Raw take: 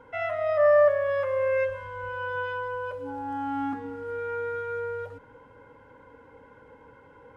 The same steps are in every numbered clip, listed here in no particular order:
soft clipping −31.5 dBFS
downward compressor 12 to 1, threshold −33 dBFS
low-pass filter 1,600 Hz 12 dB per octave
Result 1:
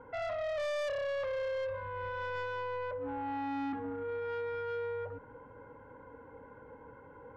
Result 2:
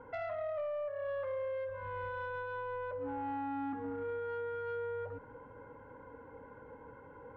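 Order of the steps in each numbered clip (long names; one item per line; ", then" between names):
low-pass filter, then soft clipping, then downward compressor
downward compressor, then low-pass filter, then soft clipping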